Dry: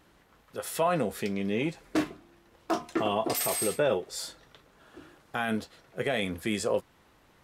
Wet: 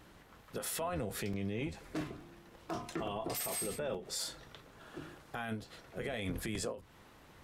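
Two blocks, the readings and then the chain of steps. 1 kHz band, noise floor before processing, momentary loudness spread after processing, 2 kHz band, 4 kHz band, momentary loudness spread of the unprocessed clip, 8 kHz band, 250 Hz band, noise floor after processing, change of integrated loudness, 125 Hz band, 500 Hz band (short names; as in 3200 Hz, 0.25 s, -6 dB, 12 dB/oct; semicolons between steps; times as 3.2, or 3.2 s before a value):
-10.5 dB, -62 dBFS, 18 LU, -9.5 dB, -6.5 dB, 11 LU, -5.5 dB, -9.0 dB, -60 dBFS, -9.0 dB, -4.0 dB, -11.0 dB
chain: octaver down 1 oct, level -3 dB; compressor, threshold -31 dBFS, peak gain reduction 10 dB; limiter -31 dBFS, peak gain reduction 10.5 dB; crackling interface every 0.87 s, samples 128, repeat, from 0.46; ending taper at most 150 dB/s; gain +2.5 dB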